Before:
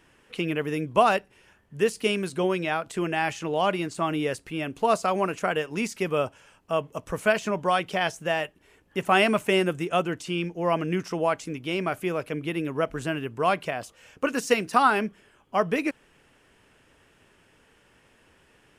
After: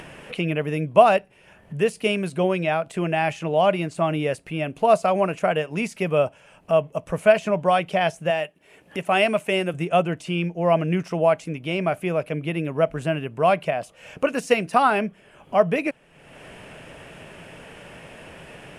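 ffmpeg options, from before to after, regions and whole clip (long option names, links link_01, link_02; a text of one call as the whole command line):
ffmpeg -i in.wav -filter_complex "[0:a]asettb=1/sr,asplit=3[link_01][link_02][link_03];[link_01]atrim=end=8.304[link_04];[link_02]atrim=start=8.3:end=9.74,asetpts=PTS-STARTPTS,afade=type=in:duration=0.004:curve=qsin,afade=type=out:start_time=1.436:duration=0.004:curve=qsin,highpass=frequency=280:poles=1,equalizer=frequency=900:width_type=o:width=2.3:gain=-3.5[link_05];[link_03]atrim=start=9.736[link_06];[link_04][link_05]acrossfade=duration=0.004:curve1=hsin:curve2=qsin[link_07];[link_07][link_06]acrossfade=duration=0.004:curve1=qsin:curve2=hsin,equalizer=frequency=160:width_type=o:width=0.67:gain=9,equalizer=frequency=630:width_type=o:width=0.67:gain=10,equalizer=frequency=2500:width_type=o:width=0.67:gain=6,equalizer=frequency=10000:width_type=o:width=0.67:gain=9,acompressor=mode=upward:threshold=-26dB:ratio=2.5,highshelf=frequency=5900:gain=-9.5,volume=-1.5dB" out.wav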